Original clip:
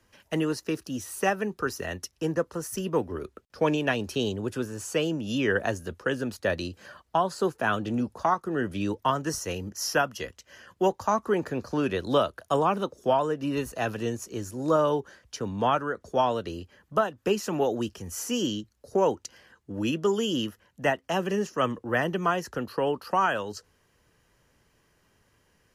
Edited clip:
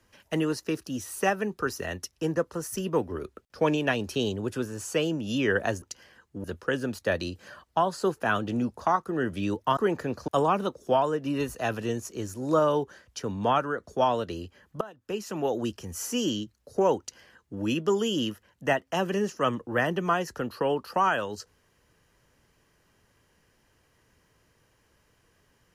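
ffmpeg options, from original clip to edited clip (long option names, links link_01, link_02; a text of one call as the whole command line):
ffmpeg -i in.wav -filter_complex "[0:a]asplit=6[link_01][link_02][link_03][link_04][link_05][link_06];[link_01]atrim=end=5.822[link_07];[link_02]atrim=start=19.158:end=19.782[link_08];[link_03]atrim=start=5.818:end=9.152[link_09];[link_04]atrim=start=11.238:end=11.752[link_10];[link_05]atrim=start=12.448:end=16.98,asetpts=PTS-STARTPTS,afade=type=out:start_time=4.528:duration=0.004:curve=hsin:silence=0.1[link_11];[link_06]atrim=start=16.98,asetpts=PTS-STARTPTS,afade=type=in:duration=0.89:silence=0.1[link_12];[link_07][link_08]acrossfade=duration=0.004:curve1=hsin:curve2=hsin[link_13];[link_13][link_09]acrossfade=duration=0.004:curve1=hsin:curve2=hsin[link_14];[link_14][link_10]acrossfade=duration=0.004:curve1=hsin:curve2=hsin[link_15];[link_11][link_12]concat=n=2:v=0:a=1[link_16];[link_15][link_16]acrossfade=duration=0.004:curve1=hsin:curve2=hsin" out.wav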